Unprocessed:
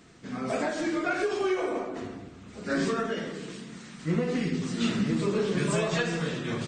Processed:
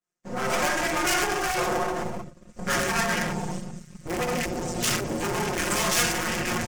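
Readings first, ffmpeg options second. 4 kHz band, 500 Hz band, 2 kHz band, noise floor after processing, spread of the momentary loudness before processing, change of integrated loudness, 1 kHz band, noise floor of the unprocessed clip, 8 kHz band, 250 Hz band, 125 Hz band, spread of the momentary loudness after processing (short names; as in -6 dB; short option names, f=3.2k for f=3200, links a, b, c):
+8.0 dB, 0.0 dB, +7.0 dB, -52 dBFS, 14 LU, +3.5 dB, +8.0 dB, -48 dBFS, +14.0 dB, -2.5 dB, -1.0 dB, 13 LU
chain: -filter_complex "[0:a]aecho=1:1:385:0.224,agate=range=-33dB:threshold=-37dB:ratio=3:detection=peak,afwtdn=0.0126,acrossover=split=150[a][b];[b]aeval=exprs='max(val(0),0)':c=same[c];[a][c]amix=inputs=2:normalize=0,asplit=2[d][e];[e]highpass=f=720:p=1,volume=22dB,asoftclip=type=tanh:threshold=-15.5dB[f];[d][f]amix=inputs=2:normalize=0,lowpass=f=2.3k:p=1,volume=-6dB,asubboost=boost=7.5:cutoff=130,aecho=1:1:5.6:0.86,asoftclip=type=hard:threshold=-14.5dB,afftfilt=real='re*lt(hypot(re,im),0.501)':imag='im*lt(hypot(re,im),0.501)':win_size=1024:overlap=0.75,aexciter=amount=3.4:drive=9.1:freq=5.5k,adynamicequalizer=threshold=0.00891:dfrequency=2200:dqfactor=0.7:tfrequency=2200:tqfactor=0.7:attack=5:release=100:ratio=0.375:range=2.5:mode=boostabove:tftype=highshelf"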